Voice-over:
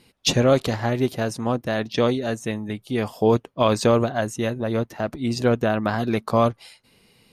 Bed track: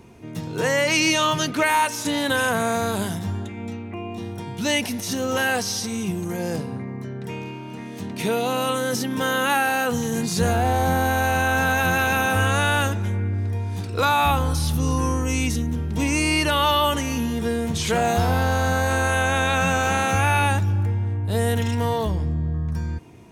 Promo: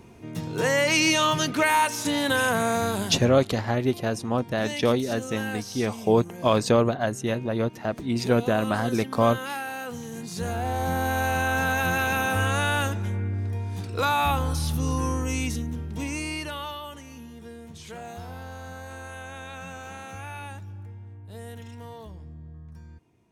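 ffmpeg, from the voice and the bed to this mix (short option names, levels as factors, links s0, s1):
-filter_complex "[0:a]adelay=2850,volume=0.794[s0];[1:a]volume=2.11,afade=t=out:st=2.86:d=0.58:silence=0.298538,afade=t=in:st=10.23:d=0.97:silence=0.398107,afade=t=out:st=15.23:d=1.59:silence=0.188365[s1];[s0][s1]amix=inputs=2:normalize=0"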